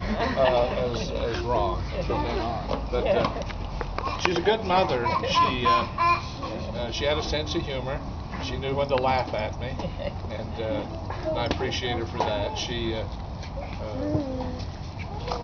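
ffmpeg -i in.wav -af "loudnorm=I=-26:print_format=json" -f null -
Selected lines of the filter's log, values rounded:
"input_i" : "-27.5",
"input_tp" : "-4.2",
"input_lra" : "6.8",
"input_thresh" : "-37.5",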